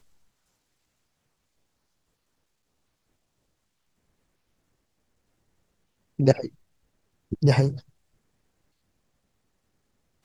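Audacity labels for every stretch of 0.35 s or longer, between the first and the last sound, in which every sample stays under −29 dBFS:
6.460000	7.320000	silence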